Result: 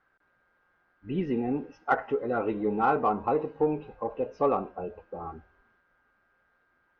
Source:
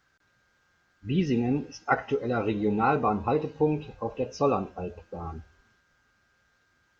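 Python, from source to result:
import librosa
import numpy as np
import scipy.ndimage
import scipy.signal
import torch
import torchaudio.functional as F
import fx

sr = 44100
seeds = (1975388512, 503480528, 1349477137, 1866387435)

p1 = scipy.signal.sosfilt(scipy.signal.butter(2, 1500.0, 'lowpass', fs=sr, output='sos'), x)
p2 = fx.peak_eq(p1, sr, hz=94.0, db=-13.0, octaves=2.4)
p3 = 10.0 ** (-23.5 / 20.0) * np.tanh(p2 / 10.0 ** (-23.5 / 20.0))
y = p2 + F.gain(torch.from_numpy(p3), -9.5).numpy()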